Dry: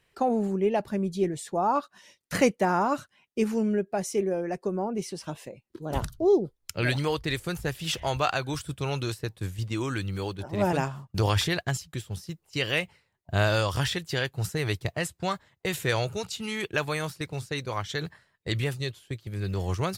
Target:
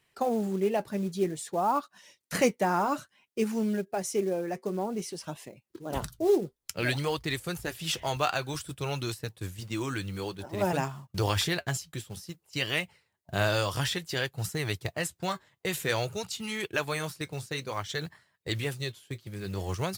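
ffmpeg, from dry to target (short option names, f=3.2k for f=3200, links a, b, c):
-af "highpass=f=98:p=1,highshelf=f=5.8k:g=4.5,acrusher=bits=6:mode=log:mix=0:aa=0.000001,flanger=delay=0.9:depth=5.8:regen=-67:speed=0.55:shape=sinusoidal,volume=2dB"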